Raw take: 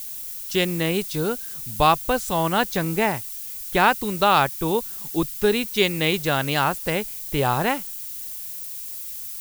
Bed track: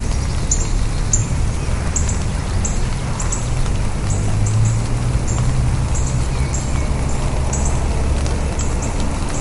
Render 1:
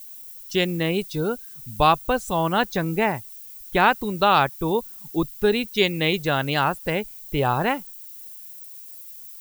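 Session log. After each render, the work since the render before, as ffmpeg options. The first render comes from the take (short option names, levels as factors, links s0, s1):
-af "afftdn=nr=11:nf=-34"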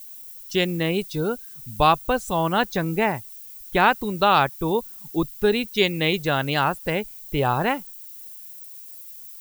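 -af anull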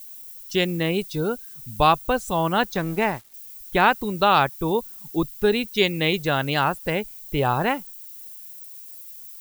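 -filter_complex "[0:a]asettb=1/sr,asplit=3[s0][s1][s2];[s0]atrim=end=2.744[s3];[s1]atrim=start=2.74:end=3.34,asetpts=PTS-STARTPTS,afade=t=in:d=0.004:c=qsin,afade=t=out:st=0.596:d=0.004:c=qsin,aeval=exprs='sgn(val(0))*max(abs(val(0))-0.0119,0)':c=same[s4];[s2]atrim=start=3.336[s5];[s3][s4]acrossfade=d=0.004:c1=hsin:c2=qsin[s6];[s6][s5]acrossfade=d=0.004:c1=qsin:c2=hsin"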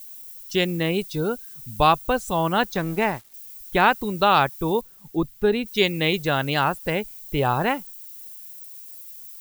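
-filter_complex "[0:a]asettb=1/sr,asplit=3[s0][s1][s2];[s0]atrim=end=4.814[s3];[s1]atrim=start=4.81:end=5.66,asetpts=PTS-STARTPTS,afade=t=in:d=0.004:c=qsin,afade=t=out:st=0.846:d=0.004:c=qsin,highshelf=f=2700:g=-9[s4];[s2]atrim=start=5.656[s5];[s3][s4]acrossfade=d=0.004:c1=hsin:c2=qsin[s6];[s6][s5]acrossfade=d=0.004:c1=qsin:c2=hsin"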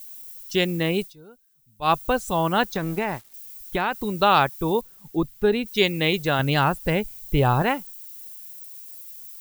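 -filter_complex "[0:a]asettb=1/sr,asplit=3[s0][s1][s2];[s0]atrim=end=2.674[s3];[s1]atrim=start=2.67:end=4.11,asetpts=PTS-STARTPTS,afade=t=in:d=0.004:c=qsin,afade=t=out:st=1.436:d=0.004:c=qsin,acompressor=threshold=0.112:ratio=6:attack=3.2:release=140:knee=1:detection=peak[s4];[s2]atrim=start=4.106[s5];[s3][s4]acrossfade=d=0.004:c1=hsin:c2=qsin[s6];[s6][s5]acrossfade=d=0.004:c1=qsin:c2=hsin,asettb=1/sr,asplit=3[s7][s8][s9];[s7]atrim=end=6.394[s10];[s8]atrim=start=6.39:end=7.62,asetpts=PTS-STARTPTS,afade=t=in:d=0.004:c=qsin,afade=t=out:st=1.226:d=0.004:c=qsin,lowshelf=f=170:g=9.5[s11];[s9]atrim=start=7.616[s12];[s10][s11]acrossfade=d=0.004:c1=hsin:c2=qsin[s13];[s13][s12]acrossfade=d=0.004:c1=qsin:c2=hsin,asplit=3[s14][s15][s16];[s14]atrim=end=1.14,asetpts=PTS-STARTPTS,afade=t=out:st=1.02:d=0.12:silence=0.0749894[s17];[s15]atrim=start=1.14:end=1.81,asetpts=PTS-STARTPTS,volume=0.075[s18];[s16]atrim=start=1.81,asetpts=PTS-STARTPTS,afade=t=in:d=0.12:silence=0.0749894[s19];[s17][s18][s19]concat=n=3:v=0:a=1"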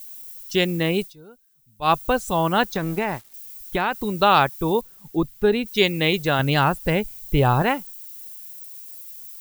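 -af "volume=1.19"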